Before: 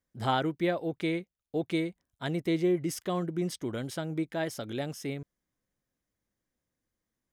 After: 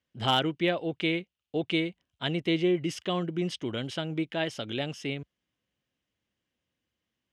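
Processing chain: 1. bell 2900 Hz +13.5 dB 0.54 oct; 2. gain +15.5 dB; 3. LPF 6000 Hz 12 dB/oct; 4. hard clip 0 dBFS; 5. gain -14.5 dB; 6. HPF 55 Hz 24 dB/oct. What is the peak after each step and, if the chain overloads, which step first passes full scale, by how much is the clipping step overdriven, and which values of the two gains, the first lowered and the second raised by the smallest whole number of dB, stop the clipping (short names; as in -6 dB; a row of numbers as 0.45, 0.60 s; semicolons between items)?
-11.5, +4.0, +4.0, 0.0, -14.5, -12.5 dBFS; step 2, 4.0 dB; step 2 +11.5 dB, step 5 -10.5 dB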